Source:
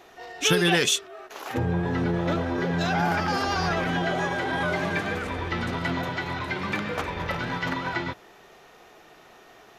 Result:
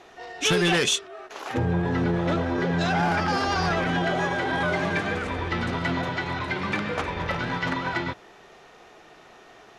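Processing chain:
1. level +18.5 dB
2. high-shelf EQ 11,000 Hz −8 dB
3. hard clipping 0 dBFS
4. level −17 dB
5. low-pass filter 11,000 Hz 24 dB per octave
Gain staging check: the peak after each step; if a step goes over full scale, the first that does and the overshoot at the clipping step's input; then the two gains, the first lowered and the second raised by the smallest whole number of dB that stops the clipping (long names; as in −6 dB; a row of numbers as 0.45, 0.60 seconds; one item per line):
+10.5, +9.5, 0.0, −17.0, −15.0 dBFS
step 1, 9.5 dB
step 1 +8.5 dB, step 4 −7 dB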